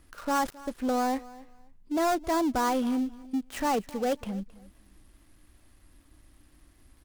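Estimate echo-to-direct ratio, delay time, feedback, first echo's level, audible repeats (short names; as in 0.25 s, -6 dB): -20.0 dB, 0.267 s, 21%, -20.0 dB, 2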